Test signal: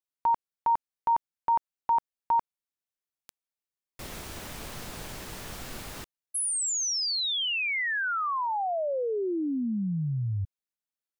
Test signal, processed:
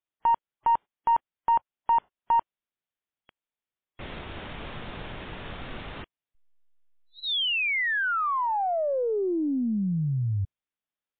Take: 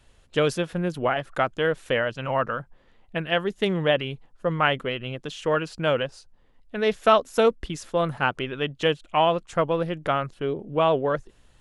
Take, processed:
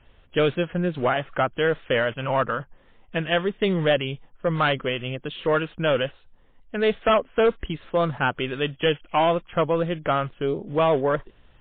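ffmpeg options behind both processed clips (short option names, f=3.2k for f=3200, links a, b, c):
-af "aeval=exprs='0.562*(cos(1*acos(clip(val(0)/0.562,-1,1)))-cos(1*PI/2))+0.0112*(cos(4*acos(clip(val(0)/0.562,-1,1)))-cos(4*PI/2))+0.178*(cos(5*acos(clip(val(0)/0.562,-1,1)))-cos(5*PI/2))+0.0316*(cos(6*acos(clip(val(0)/0.562,-1,1)))-cos(6*PI/2))':c=same,volume=-5dB" -ar 8000 -c:a libmp3lame -b:a 24k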